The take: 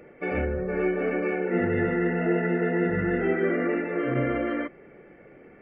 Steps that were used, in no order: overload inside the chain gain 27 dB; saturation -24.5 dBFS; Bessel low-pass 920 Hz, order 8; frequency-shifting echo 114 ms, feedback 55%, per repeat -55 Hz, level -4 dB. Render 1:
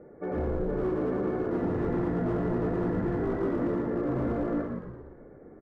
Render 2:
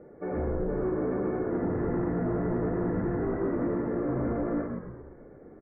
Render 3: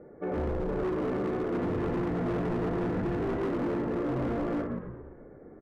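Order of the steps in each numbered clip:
saturation > Bessel low-pass > overload inside the chain > frequency-shifting echo; saturation > overload inside the chain > Bessel low-pass > frequency-shifting echo; Bessel low-pass > saturation > frequency-shifting echo > overload inside the chain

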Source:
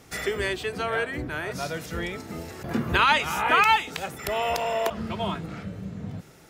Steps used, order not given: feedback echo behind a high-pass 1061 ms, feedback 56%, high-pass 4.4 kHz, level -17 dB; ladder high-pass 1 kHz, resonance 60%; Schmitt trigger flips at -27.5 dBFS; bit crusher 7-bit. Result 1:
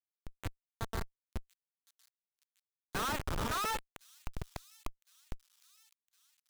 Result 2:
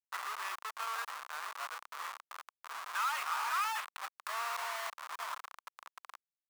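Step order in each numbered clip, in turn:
bit crusher > ladder high-pass > Schmitt trigger > feedback echo behind a high-pass; feedback echo behind a high-pass > bit crusher > Schmitt trigger > ladder high-pass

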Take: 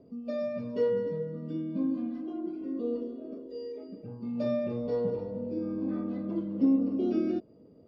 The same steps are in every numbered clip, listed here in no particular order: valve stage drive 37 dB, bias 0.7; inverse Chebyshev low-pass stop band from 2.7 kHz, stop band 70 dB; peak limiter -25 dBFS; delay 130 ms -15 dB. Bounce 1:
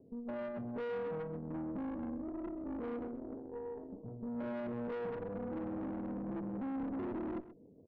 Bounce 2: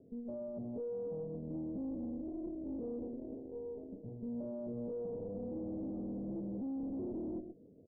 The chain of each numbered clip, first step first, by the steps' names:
inverse Chebyshev low-pass > peak limiter > valve stage > delay; delay > peak limiter > valve stage > inverse Chebyshev low-pass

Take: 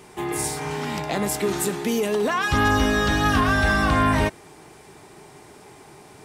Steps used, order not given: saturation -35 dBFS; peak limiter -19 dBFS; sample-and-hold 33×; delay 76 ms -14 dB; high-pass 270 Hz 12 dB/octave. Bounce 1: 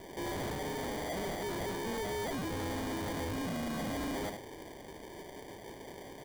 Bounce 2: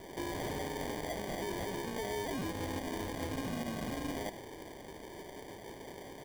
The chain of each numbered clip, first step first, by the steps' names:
high-pass > sample-and-hold > peak limiter > delay > saturation; peak limiter > saturation > high-pass > sample-and-hold > delay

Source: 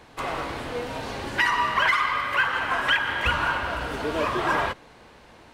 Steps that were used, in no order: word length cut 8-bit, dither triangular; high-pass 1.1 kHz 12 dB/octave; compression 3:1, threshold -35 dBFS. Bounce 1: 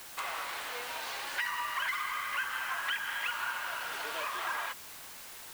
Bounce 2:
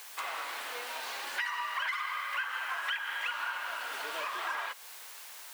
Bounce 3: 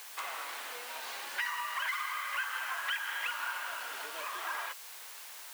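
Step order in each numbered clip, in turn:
high-pass > compression > word length cut; word length cut > high-pass > compression; compression > word length cut > high-pass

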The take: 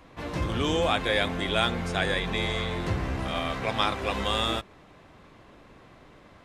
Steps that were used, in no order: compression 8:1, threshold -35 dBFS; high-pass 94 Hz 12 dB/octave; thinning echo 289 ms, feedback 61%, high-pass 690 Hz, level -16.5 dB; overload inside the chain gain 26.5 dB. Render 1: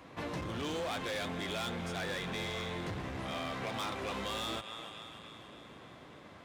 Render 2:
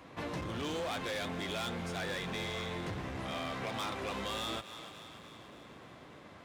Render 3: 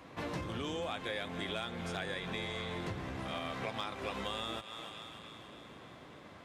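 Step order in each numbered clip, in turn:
thinning echo > overload inside the chain > compression > high-pass; overload inside the chain > thinning echo > compression > high-pass; thinning echo > compression > overload inside the chain > high-pass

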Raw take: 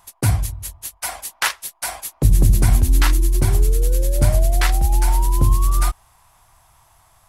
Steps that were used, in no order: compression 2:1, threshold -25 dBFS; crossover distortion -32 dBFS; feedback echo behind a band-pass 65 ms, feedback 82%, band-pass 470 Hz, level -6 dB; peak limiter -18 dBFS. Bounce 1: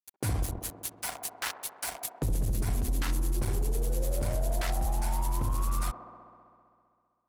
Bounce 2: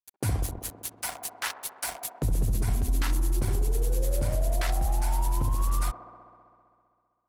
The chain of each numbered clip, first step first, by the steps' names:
peak limiter > crossover distortion > feedback echo behind a band-pass > compression; crossover distortion > compression > peak limiter > feedback echo behind a band-pass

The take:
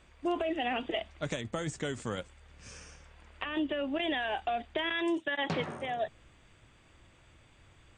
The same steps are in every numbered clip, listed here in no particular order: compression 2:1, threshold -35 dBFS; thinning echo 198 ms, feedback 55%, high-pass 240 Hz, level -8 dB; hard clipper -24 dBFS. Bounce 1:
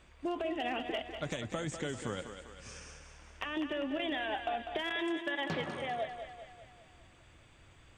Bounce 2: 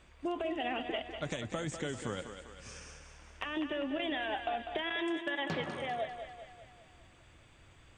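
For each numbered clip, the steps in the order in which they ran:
hard clipper > compression > thinning echo; compression > thinning echo > hard clipper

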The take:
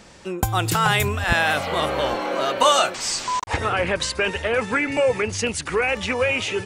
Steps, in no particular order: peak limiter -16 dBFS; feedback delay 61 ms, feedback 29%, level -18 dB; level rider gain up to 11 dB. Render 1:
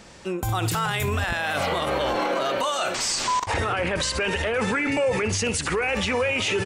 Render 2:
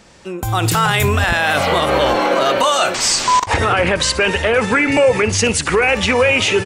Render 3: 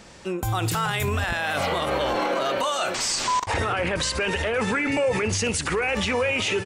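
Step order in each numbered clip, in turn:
feedback delay > level rider > peak limiter; peak limiter > feedback delay > level rider; level rider > peak limiter > feedback delay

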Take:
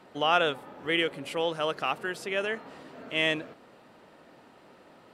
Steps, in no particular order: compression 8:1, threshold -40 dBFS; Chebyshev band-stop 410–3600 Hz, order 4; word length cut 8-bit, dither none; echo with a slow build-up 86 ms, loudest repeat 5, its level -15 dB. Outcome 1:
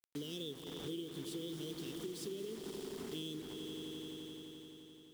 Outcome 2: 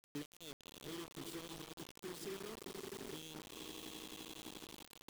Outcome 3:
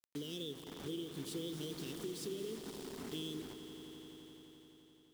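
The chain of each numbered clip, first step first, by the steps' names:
Chebyshev band-stop > word length cut > echo with a slow build-up > compression; echo with a slow build-up > compression > Chebyshev band-stop > word length cut; Chebyshev band-stop > word length cut > compression > echo with a slow build-up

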